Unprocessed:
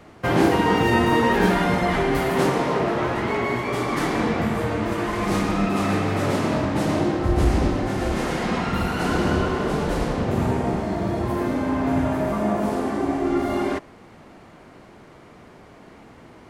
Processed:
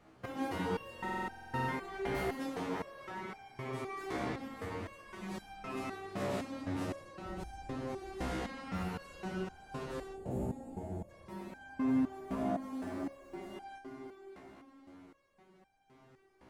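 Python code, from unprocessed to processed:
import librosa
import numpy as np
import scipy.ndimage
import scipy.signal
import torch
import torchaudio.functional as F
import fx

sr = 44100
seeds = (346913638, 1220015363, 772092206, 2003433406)

y = fx.echo_heads(x, sr, ms=203, heads='all three', feedback_pct=51, wet_db=-16.5)
y = fx.spec_box(y, sr, start_s=10.13, length_s=0.96, low_hz=910.0, high_hz=6500.0, gain_db=-14)
y = fx.quant_companded(y, sr, bits=8, at=(12.68, 13.35))
y = fx.buffer_glitch(y, sr, at_s=(0.94,), block=2048, repeats=15)
y = fx.resonator_held(y, sr, hz=3.9, low_hz=64.0, high_hz=790.0)
y = y * librosa.db_to_amplitude(-6.5)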